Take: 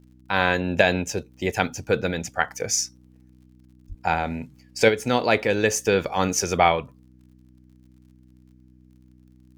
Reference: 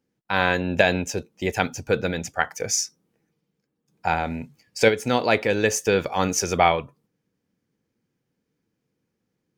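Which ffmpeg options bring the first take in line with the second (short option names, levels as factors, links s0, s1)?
-filter_complex "[0:a]adeclick=t=4,bandreject=f=62.6:t=h:w=4,bandreject=f=125.2:t=h:w=4,bandreject=f=187.8:t=h:w=4,bandreject=f=250.4:t=h:w=4,bandreject=f=313:t=h:w=4,asplit=3[s0][s1][s2];[s0]afade=t=out:st=3.88:d=0.02[s3];[s1]highpass=f=140:w=0.5412,highpass=f=140:w=1.3066,afade=t=in:st=3.88:d=0.02,afade=t=out:st=4:d=0.02[s4];[s2]afade=t=in:st=4:d=0.02[s5];[s3][s4][s5]amix=inputs=3:normalize=0"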